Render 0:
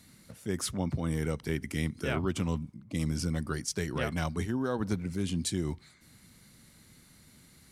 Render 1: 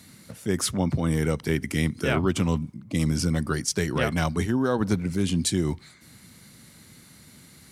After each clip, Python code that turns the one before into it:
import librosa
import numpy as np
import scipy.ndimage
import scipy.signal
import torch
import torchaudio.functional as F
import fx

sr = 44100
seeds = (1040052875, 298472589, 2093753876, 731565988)

y = scipy.signal.sosfilt(scipy.signal.butter(2, 73.0, 'highpass', fs=sr, output='sos'), x)
y = F.gain(torch.from_numpy(y), 7.5).numpy()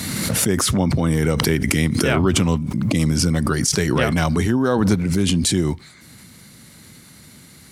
y = fx.pre_swell(x, sr, db_per_s=23.0)
y = F.gain(torch.from_numpy(y), 5.0).numpy()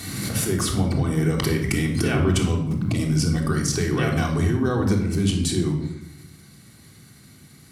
y = fx.room_shoebox(x, sr, seeds[0], volume_m3=2300.0, walls='furnished', distance_m=3.5)
y = F.gain(torch.from_numpy(y), -8.5).numpy()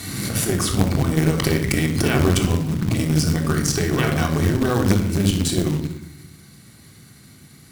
y = fx.quant_float(x, sr, bits=2)
y = fx.cheby_harmonics(y, sr, harmonics=(2,), levels_db=(-7,), full_scale_db=-8.5)
y = F.gain(torch.from_numpy(y), 2.0).numpy()